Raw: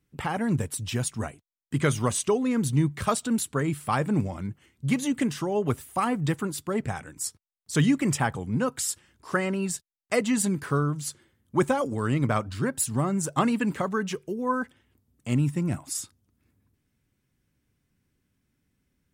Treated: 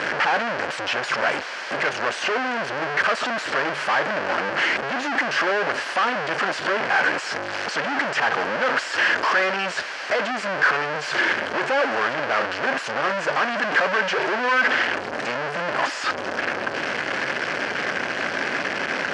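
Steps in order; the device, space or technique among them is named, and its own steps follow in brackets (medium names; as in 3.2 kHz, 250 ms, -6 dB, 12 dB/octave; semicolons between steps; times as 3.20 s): 7.19–7.75 s: hum notches 50/100/150 Hz; home computer beeper (one-bit comparator; cabinet simulation 530–4300 Hz, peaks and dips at 580 Hz +4 dB, 1.6 kHz +8 dB, 3.7 kHz -10 dB); trim +9 dB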